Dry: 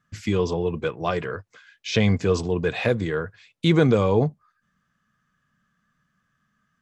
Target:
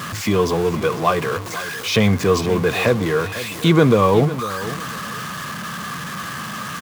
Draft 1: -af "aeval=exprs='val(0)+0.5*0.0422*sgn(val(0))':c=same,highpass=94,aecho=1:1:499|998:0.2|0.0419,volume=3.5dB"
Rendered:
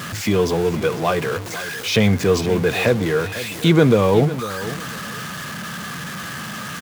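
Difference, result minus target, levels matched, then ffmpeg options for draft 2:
1000 Hz band -3.5 dB
-af "aeval=exprs='val(0)+0.5*0.0422*sgn(val(0))':c=same,highpass=94,equalizer=f=1.1k:t=o:w=0.24:g=9,aecho=1:1:499|998:0.2|0.0419,volume=3.5dB"

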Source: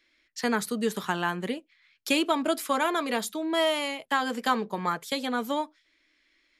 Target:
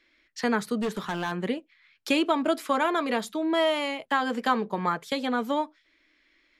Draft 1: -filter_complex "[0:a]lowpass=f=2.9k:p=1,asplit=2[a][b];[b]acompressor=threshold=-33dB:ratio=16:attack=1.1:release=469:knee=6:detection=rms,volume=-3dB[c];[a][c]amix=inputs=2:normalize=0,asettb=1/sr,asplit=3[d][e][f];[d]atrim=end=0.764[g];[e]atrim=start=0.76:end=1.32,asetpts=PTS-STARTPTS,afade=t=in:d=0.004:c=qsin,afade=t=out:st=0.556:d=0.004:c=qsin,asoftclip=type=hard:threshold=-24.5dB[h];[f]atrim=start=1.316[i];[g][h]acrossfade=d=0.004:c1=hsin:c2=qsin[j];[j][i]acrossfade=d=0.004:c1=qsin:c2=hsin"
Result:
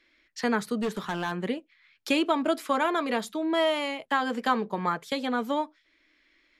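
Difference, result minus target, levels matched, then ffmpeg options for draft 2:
compressor: peak gain reduction +5.5 dB
-filter_complex "[0:a]lowpass=f=2.9k:p=1,asplit=2[a][b];[b]acompressor=threshold=-27dB:ratio=16:attack=1.1:release=469:knee=6:detection=rms,volume=-3dB[c];[a][c]amix=inputs=2:normalize=0,asettb=1/sr,asplit=3[d][e][f];[d]atrim=end=0.764[g];[e]atrim=start=0.76:end=1.32,asetpts=PTS-STARTPTS,afade=t=in:d=0.004:c=qsin,afade=t=out:st=0.556:d=0.004:c=qsin,asoftclip=type=hard:threshold=-24.5dB[h];[f]atrim=start=1.316[i];[g][h]acrossfade=d=0.004:c1=hsin:c2=qsin[j];[j][i]acrossfade=d=0.004:c1=qsin:c2=hsin"

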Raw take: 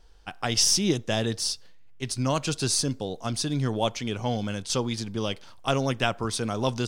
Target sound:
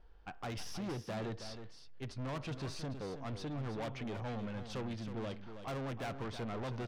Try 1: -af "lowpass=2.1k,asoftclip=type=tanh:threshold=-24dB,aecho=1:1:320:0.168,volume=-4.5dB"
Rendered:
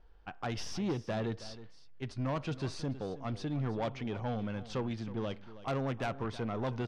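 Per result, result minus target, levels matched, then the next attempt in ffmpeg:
soft clip: distortion -6 dB; echo-to-direct -6 dB
-af "lowpass=2.1k,asoftclip=type=tanh:threshold=-33dB,aecho=1:1:320:0.168,volume=-4.5dB"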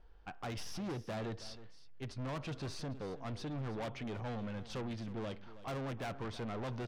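echo-to-direct -6 dB
-af "lowpass=2.1k,asoftclip=type=tanh:threshold=-33dB,aecho=1:1:320:0.335,volume=-4.5dB"

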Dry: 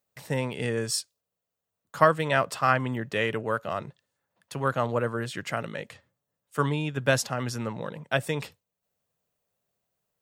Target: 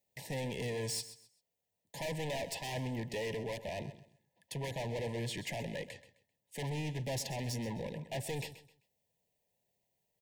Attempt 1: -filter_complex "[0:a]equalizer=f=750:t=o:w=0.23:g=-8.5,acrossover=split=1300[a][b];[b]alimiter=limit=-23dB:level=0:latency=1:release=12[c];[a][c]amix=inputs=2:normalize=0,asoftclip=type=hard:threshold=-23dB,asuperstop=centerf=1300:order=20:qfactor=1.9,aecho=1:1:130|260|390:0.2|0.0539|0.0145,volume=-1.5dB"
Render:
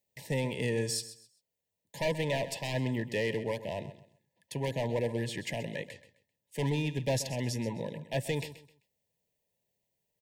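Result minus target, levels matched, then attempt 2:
hard clip: distortion -6 dB; 1000 Hz band -2.5 dB
-filter_complex "[0:a]acrossover=split=1300[a][b];[b]alimiter=limit=-23dB:level=0:latency=1:release=12[c];[a][c]amix=inputs=2:normalize=0,asoftclip=type=hard:threshold=-33.5dB,asuperstop=centerf=1300:order=20:qfactor=1.9,aecho=1:1:130|260|390:0.2|0.0539|0.0145,volume=-1.5dB"

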